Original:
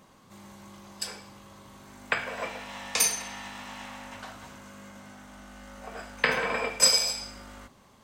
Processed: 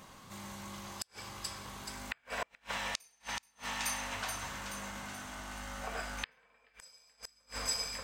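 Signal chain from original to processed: in parallel at +2 dB: compression 10:1, threshold -41 dBFS, peak gain reduction 25 dB; on the sum: two-band feedback delay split 1.3 kHz, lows 582 ms, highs 428 ms, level -8.5 dB; inverted gate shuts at -20 dBFS, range -37 dB; peaking EQ 320 Hz -6.5 dB 2.6 oct; trim -1 dB

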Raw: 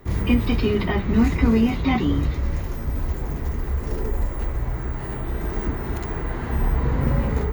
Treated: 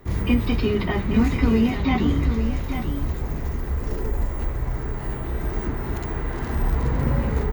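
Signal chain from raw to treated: 6.32–7.03 s: crackle 150 per s -29 dBFS; delay 840 ms -8.5 dB; trim -1 dB

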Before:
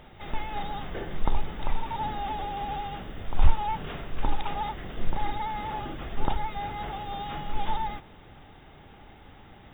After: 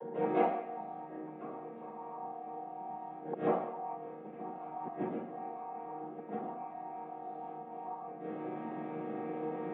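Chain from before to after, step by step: vocoder on a held chord minor triad, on D#3; dynamic bell 870 Hz, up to +4 dB, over -48 dBFS, Q 1.4; gain riding within 4 dB 0.5 s; flange 0.29 Hz, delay 1.8 ms, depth 7.5 ms, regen +79%; inverted gate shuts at -34 dBFS, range -27 dB; cabinet simulation 470–2300 Hz, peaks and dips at 500 Hz +9 dB, 830 Hz +5 dB, 1.5 kHz -5 dB; reverberation RT60 0.70 s, pre-delay 133 ms, DRR -13.5 dB; trim +1.5 dB

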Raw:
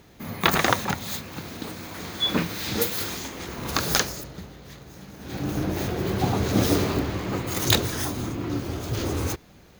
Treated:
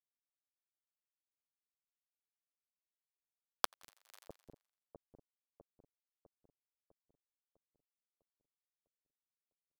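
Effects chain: Doppler pass-by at 3.16 s, 15 m/s, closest 2.2 m; tone controls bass -14 dB, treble +9 dB; in parallel at -8.5 dB: integer overflow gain 22 dB; on the sum: band-pass sweep 600 Hz -> 1.2 kHz, 2.97–4.00 s; bit crusher 5-bit; on a send: two-band feedback delay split 550 Hz, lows 652 ms, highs 85 ms, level -11.5 dB; on the sum: inverted gate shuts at -41 dBFS, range -26 dB; trim +13.5 dB

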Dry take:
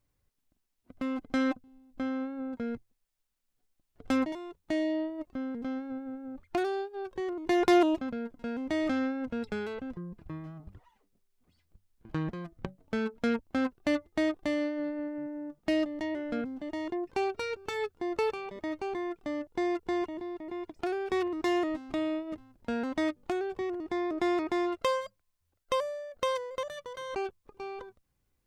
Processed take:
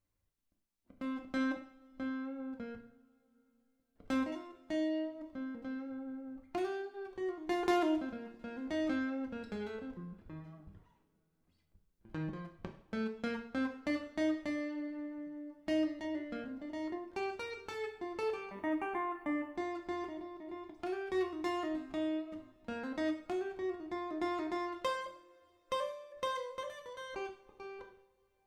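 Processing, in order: 18.50–19.51 s: FFT filter 170 Hz 0 dB, 290 Hz +7 dB, 430 Hz -3 dB, 860 Hz +11 dB, 2.8 kHz +6 dB, 4.6 kHz -19 dB, 9.7 kHz +7 dB; two-slope reverb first 0.55 s, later 4.1 s, from -27 dB, DRR 2.5 dB; trim -8.5 dB

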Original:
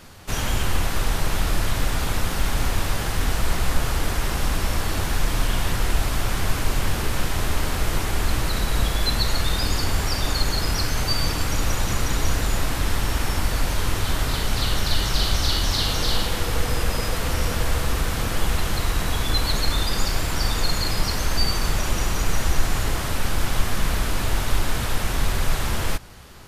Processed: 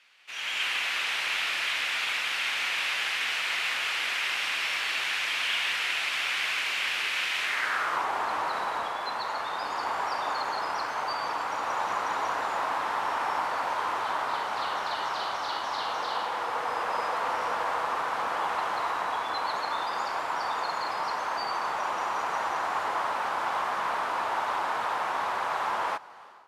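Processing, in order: high-pass 470 Hz 6 dB/octave; level rider gain up to 14 dB; band-pass sweep 2.5 kHz -> 940 Hz, 7.40–8.07 s; trim -4.5 dB

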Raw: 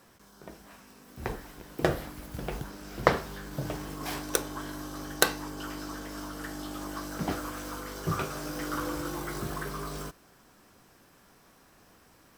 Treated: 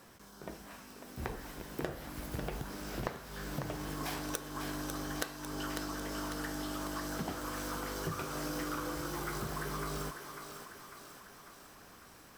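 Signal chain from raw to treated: compression 12:1, threshold -36 dBFS, peak gain reduction 21.5 dB; on a send: thinning echo 548 ms, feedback 60%, level -6.5 dB; on the sum: trim +1.5 dB

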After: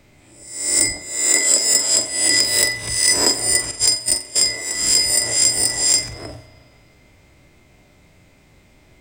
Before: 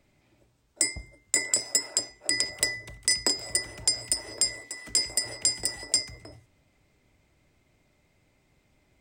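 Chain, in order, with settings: reverse spectral sustain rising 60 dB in 0.65 s; 0.92–1.63 s: high-pass 230 Hz 24 dB/octave; 3.71–4.36 s: gate -24 dBFS, range -20 dB; in parallel at -1 dB: compression, threshold -33 dBFS, peak gain reduction 15.5 dB; on the sum: saturation -9.5 dBFS, distortion -19 dB; flutter echo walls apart 7.6 m, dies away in 0.3 s; spring tank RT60 2.3 s, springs 33 ms, chirp 20 ms, DRR 12.5 dB; trim +6 dB

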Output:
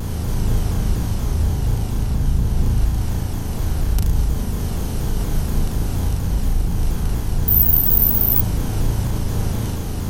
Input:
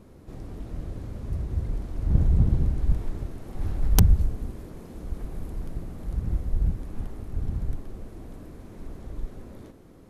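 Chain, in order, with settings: spectral levelling over time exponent 0.4; gain riding within 3 dB 2 s; peak limiter -11.5 dBFS, peak gain reduction 6.5 dB; on a send: flutter echo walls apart 6.3 m, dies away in 0.57 s; 7.48–8.41 s: on the sum: careless resampling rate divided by 3×, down filtered, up zero stuff; vibrato with a chosen wave saw down 4.2 Hz, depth 160 cents; trim -1.5 dB

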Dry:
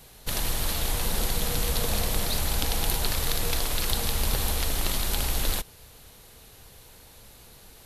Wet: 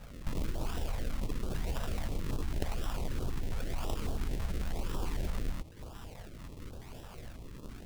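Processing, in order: tone controls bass +7 dB, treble +5 dB; de-hum 77.95 Hz, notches 39; compression 5:1, threshold -31 dBFS, peak gain reduction 15.5 dB; decimation with a swept rate 40×, swing 100% 0.96 Hz; step-sequenced notch 9.1 Hz 330–2000 Hz

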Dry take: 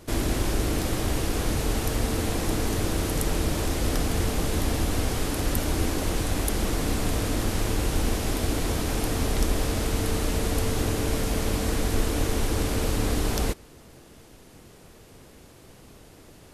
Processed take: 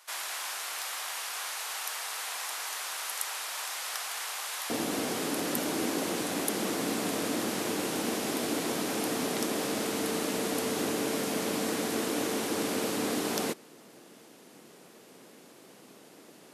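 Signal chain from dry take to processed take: high-pass 890 Hz 24 dB/octave, from 4.70 s 190 Hz; trim -1.5 dB

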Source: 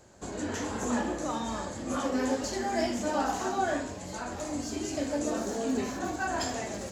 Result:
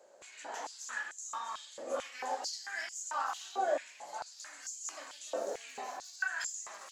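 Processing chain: step-sequenced high-pass 4.5 Hz 540–6800 Hz; trim -8.5 dB

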